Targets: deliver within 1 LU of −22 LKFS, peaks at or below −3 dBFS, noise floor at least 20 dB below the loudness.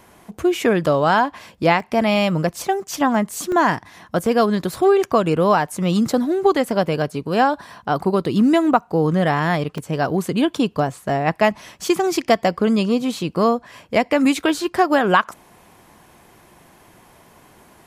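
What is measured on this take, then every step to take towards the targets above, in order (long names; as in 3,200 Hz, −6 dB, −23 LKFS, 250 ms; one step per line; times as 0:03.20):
number of dropouts 4; longest dropout 2.0 ms; integrated loudness −19.5 LKFS; sample peak −1.5 dBFS; target loudness −22.0 LKFS
→ repair the gap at 0:01.80/0:03.52/0:04.26/0:09.78, 2 ms
level −2.5 dB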